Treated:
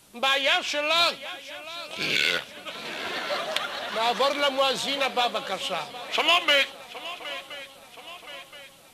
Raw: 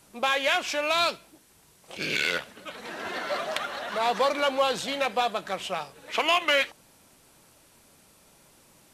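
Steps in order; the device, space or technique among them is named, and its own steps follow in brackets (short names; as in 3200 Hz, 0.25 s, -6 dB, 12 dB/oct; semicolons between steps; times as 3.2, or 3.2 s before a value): 0.41–0.96 high shelf 9400 Hz -8.5 dB; presence and air boost (bell 3400 Hz +6 dB 0.82 oct; high shelf 9100 Hz +4 dB); swung echo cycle 1.023 s, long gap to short 3:1, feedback 50%, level -16 dB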